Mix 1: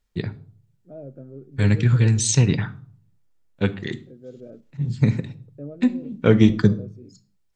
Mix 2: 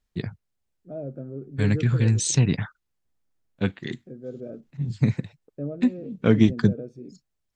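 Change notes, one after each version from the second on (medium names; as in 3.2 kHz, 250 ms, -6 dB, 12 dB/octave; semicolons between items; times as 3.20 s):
second voice +5.0 dB; reverb: off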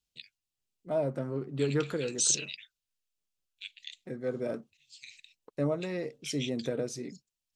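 first voice: add elliptic high-pass 2.6 kHz, stop band 60 dB; second voice: remove boxcar filter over 44 samples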